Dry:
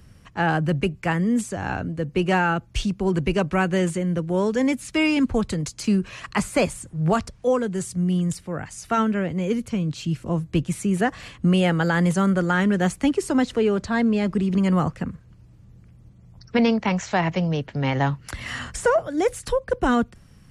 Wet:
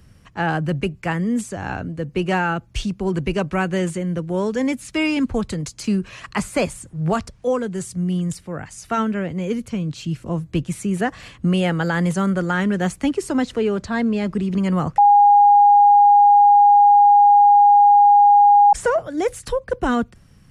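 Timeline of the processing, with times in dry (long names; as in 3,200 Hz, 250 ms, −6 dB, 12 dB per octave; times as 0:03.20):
0:14.98–0:18.73: beep over 818 Hz −8 dBFS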